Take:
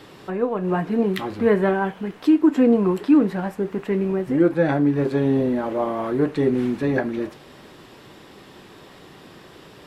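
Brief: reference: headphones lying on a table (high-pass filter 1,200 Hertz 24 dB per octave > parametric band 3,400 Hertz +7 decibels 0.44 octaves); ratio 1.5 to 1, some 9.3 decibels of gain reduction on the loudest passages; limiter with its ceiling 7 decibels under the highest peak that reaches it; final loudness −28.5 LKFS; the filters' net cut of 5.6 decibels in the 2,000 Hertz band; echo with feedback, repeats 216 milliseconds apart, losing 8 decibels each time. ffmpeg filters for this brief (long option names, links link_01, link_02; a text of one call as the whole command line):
ffmpeg -i in.wav -af "equalizer=frequency=2000:width_type=o:gain=-7.5,acompressor=threshold=-38dB:ratio=1.5,alimiter=limit=-23dB:level=0:latency=1,highpass=frequency=1200:width=0.5412,highpass=frequency=1200:width=1.3066,equalizer=frequency=3400:width_type=o:width=0.44:gain=7,aecho=1:1:216|432|648|864|1080:0.398|0.159|0.0637|0.0255|0.0102,volume=19.5dB" out.wav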